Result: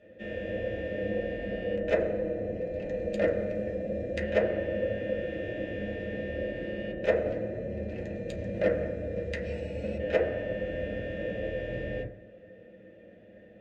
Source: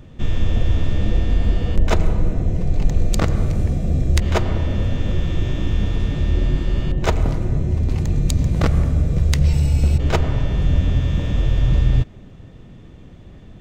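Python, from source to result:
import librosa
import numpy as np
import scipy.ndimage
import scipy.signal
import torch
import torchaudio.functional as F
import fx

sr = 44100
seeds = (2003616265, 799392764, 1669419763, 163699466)

y = fx.vowel_filter(x, sr, vowel='e')
y = fx.cheby_harmonics(y, sr, harmonics=(2,), levels_db=(-27,), full_scale_db=-16.5)
y = fx.rev_fdn(y, sr, rt60_s=0.53, lf_ratio=1.2, hf_ratio=0.25, size_ms=29.0, drr_db=-5.5)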